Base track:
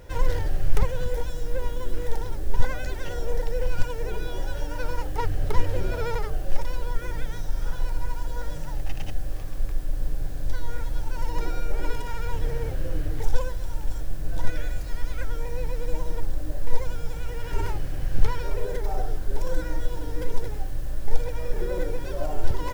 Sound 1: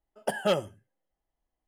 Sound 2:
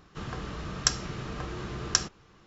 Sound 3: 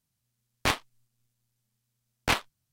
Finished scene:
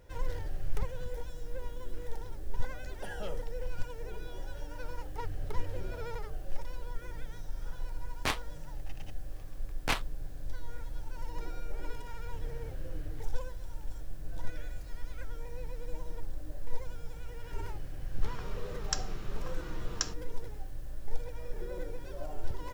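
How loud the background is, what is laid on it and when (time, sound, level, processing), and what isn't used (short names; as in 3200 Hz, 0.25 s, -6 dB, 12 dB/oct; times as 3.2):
base track -11.5 dB
2.75 add 1 -8 dB + limiter -26 dBFS
7.6 add 3 -6 dB
18.06 add 2 -9 dB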